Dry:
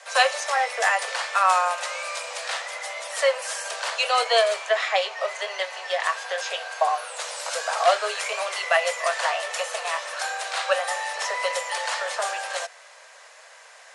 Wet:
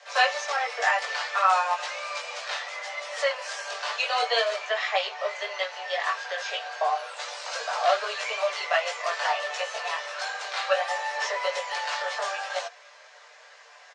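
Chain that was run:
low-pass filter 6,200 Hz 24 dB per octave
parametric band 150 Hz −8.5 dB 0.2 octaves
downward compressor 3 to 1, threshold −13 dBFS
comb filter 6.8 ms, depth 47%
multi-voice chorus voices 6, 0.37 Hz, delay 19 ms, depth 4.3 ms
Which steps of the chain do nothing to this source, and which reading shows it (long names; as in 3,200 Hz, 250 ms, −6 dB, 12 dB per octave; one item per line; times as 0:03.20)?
parametric band 150 Hz: nothing at its input below 380 Hz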